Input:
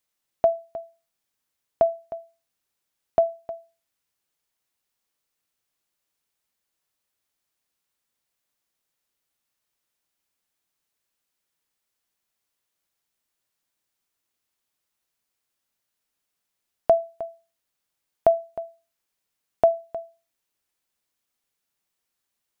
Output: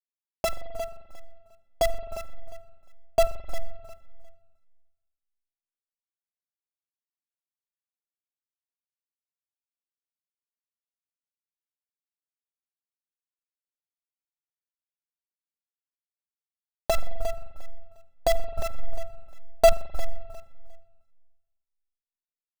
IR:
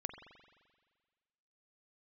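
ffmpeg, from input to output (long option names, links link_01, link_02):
-filter_complex "[0:a]acrusher=bits=4:dc=4:mix=0:aa=0.000001,aecho=1:1:354|708|1062:0.251|0.0553|0.0122,asplit=2[link_01][link_02];[link_02]asubboost=boost=8:cutoff=78[link_03];[1:a]atrim=start_sample=2205,lowshelf=frequency=460:gain=11.5[link_04];[link_03][link_04]afir=irnorm=-1:irlink=0,volume=-3.5dB[link_05];[link_01][link_05]amix=inputs=2:normalize=0,asettb=1/sr,asplit=3[link_06][link_07][link_08];[link_06]atrim=end=18.594[link_09];[link_07]atrim=start=18.59:end=19.72,asetpts=PTS-STARTPTS,afade=type=in:duration=0.004:curve=qsin,afade=type=out:start_time=1.126:duration=0.004:curve=qsin,acontrast=77[link_10];[link_08]atrim=start=19.716[link_11];[link_09][link_10]acrossfade=duration=0.004:curve1=hsin:curve2=qsin[link_12];[link_12][link_11]acrossfade=duration=0.004:curve1=qsin:curve2=hsin,asplit=2[link_13][link_14];[link_14]adelay=3.5,afreqshift=-1.7[link_15];[link_13][link_15]amix=inputs=2:normalize=1,volume=-5.5dB"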